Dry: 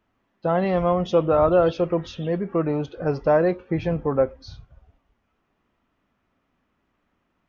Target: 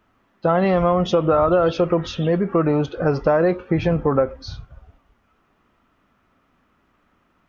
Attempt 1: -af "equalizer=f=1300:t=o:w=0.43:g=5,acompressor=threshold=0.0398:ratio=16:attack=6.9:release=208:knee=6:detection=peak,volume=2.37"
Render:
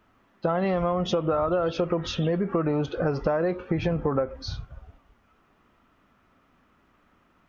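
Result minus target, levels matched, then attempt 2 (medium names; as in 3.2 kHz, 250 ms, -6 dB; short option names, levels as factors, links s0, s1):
compression: peak gain reduction +8 dB
-af "equalizer=f=1300:t=o:w=0.43:g=5,acompressor=threshold=0.106:ratio=16:attack=6.9:release=208:knee=6:detection=peak,volume=2.37"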